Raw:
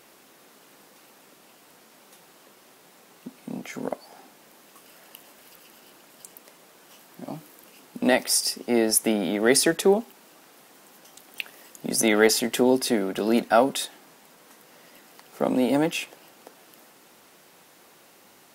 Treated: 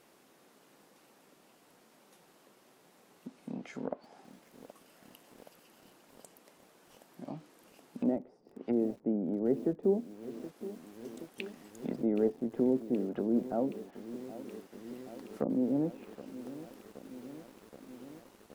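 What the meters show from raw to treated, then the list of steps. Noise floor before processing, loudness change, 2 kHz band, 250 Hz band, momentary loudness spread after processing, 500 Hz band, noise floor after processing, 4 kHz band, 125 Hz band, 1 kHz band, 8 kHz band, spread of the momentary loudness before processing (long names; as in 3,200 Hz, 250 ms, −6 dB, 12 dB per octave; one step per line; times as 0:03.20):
−55 dBFS, −12.0 dB, −24.5 dB, −6.5 dB, 20 LU, −10.0 dB, −64 dBFS, below −25 dB, −5.5 dB, −17.5 dB, below −30 dB, 18 LU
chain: treble cut that deepens with the level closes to 420 Hz, closed at −21.5 dBFS
tilt shelving filter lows +3 dB, about 920 Hz
feedback echo at a low word length 773 ms, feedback 80%, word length 7 bits, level −14.5 dB
level −8.5 dB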